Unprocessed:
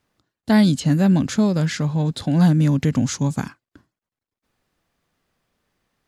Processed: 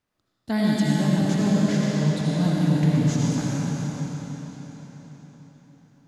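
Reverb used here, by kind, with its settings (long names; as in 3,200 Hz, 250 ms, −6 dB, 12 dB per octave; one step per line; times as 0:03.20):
comb and all-pass reverb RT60 4.8 s, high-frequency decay 0.95×, pre-delay 40 ms, DRR −6 dB
level −9.5 dB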